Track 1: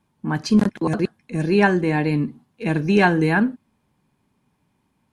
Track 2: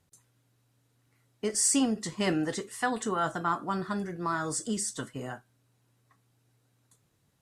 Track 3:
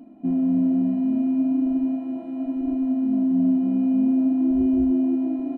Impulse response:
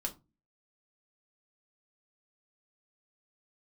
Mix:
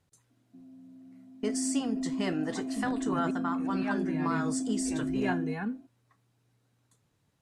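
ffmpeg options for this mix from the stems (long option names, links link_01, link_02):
-filter_complex "[0:a]asplit=2[link_01][link_02];[link_02]adelay=2.4,afreqshift=0.94[link_03];[link_01][link_03]amix=inputs=2:normalize=1,adelay=2250,volume=-14dB[link_04];[1:a]alimiter=limit=-20.5dB:level=0:latency=1:release=426,volume=-1.5dB,asplit=2[link_05][link_06];[2:a]acompressor=threshold=-24dB:ratio=6,adelay=300,volume=-6.5dB[link_07];[link_06]apad=whole_len=258984[link_08];[link_07][link_08]sidechaingate=range=-19dB:threshold=-60dB:ratio=16:detection=peak[link_09];[link_04][link_05][link_09]amix=inputs=3:normalize=0,highshelf=frequency=9900:gain=-9"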